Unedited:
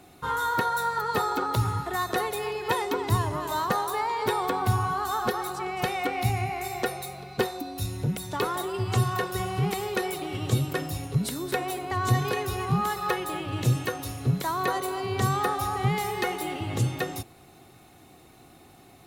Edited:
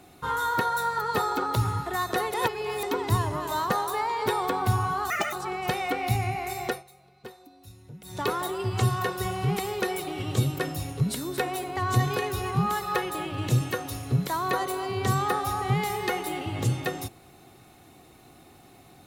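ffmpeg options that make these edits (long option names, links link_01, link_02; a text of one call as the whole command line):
ffmpeg -i in.wav -filter_complex "[0:a]asplit=7[link_01][link_02][link_03][link_04][link_05][link_06][link_07];[link_01]atrim=end=2.342[link_08];[link_02]atrim=start=2.338:end=2.832,asetpts=PTS-STARTPTS,areverse[link_09];[link_03]atrim=start=2.828:end=5.104[link_10];[link_04]atrim=start=5.1:end=5.47,asetpts=PTS-STARTPTS,asetrate=72324,aresample=44100,atrim=end_sample=9949,asetpts=PTS-STARTPTS[link_11];[link_05]atrim=start=5.466:end=6.98,asetpts=PTS-STARTPTS,afade=type=out:start_time=1.354:duration=0.16:silence=0.133352[link_12];[link_06]atrim=start=6.98:end=8.16,asetpts=PTS-STARTPTS,volume=-17.5dB[link_13];[link_07]atrim=start=8.16,asetpts=PTS-STARTPTS,afade=type=in:duration=0.16:silence=0.133352[link_14];[link_08][link_09]acrossfade=duration=0.004:curve1=hsin:curve2=hsin[link_15];[link_15][link_10]acrossfade=duration=0.004:curve1=hsin:curve2=hsin[link_16];[link_16][link_11]acrossfade=duration=0.004:curve1=hsin:curve2=hsin[link_17];[link_12][link_13][link_14]concat=n=3:v=0:a=1[link_18];[link_17][link_18]acrossfade=duration=0.004:curve1=hsin:curve2=hsin" out.wav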